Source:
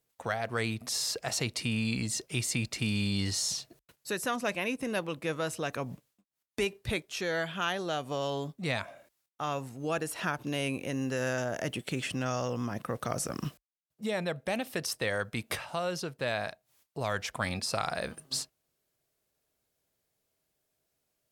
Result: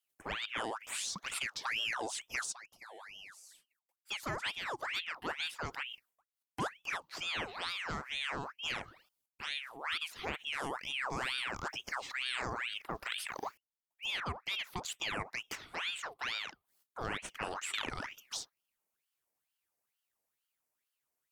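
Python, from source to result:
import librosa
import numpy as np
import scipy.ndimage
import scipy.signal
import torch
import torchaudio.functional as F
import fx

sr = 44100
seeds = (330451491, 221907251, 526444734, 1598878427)

y = fx.tone_stack(x, sr, knobs='6-0-2', at=(2.51, 4.09), fade=0.02)
y = fx.env_phaser(y, sr, low_hz=550.0, high_hz=3200.0, full_db=-27.5)
y = fx.ring_lfo(y, sr, carrier_hz=1800.0, swing_pct=70, hz=2.2)
y = F.gain(torch.from_numpy(y), -2.0).numpy()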